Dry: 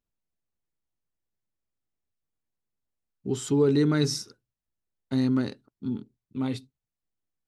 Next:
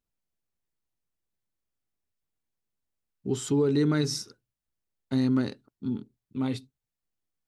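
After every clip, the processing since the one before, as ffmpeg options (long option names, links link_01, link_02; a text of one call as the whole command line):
ffmpeg -i in.wav -af "alimiter=limit=-16dB:level=0:latency=1:release=161" out.wav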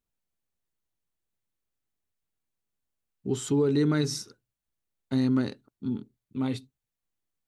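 ffmpeg -i in.wav -af "equalizer=frequency=5100:width=7.3:gain=-4" out.wav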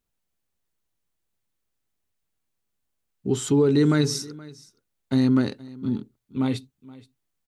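ffmpeg -i in.wav -af "aecho=1:1:473:0.0891,volume=5dB" out.wav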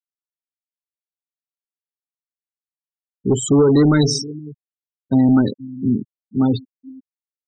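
ffmpeg -i in.wav -af "aeval=exprs='0.299*(cos(1*acos(clip(val(0)/0.299,-1,1)))-cos(1*PI/2))+0.0299*(cos(5*acos(clip(val(0)/0.299,-1,1)))-cos(5*PI/2))':channel_layout=same,afftfilt=real='re*gte(hypot(re,im),0.0631)':imag='im*gte(hypot(re,im),0.0631)':win_size=1024:overlap=0.75,volume=5.5dB" out.wav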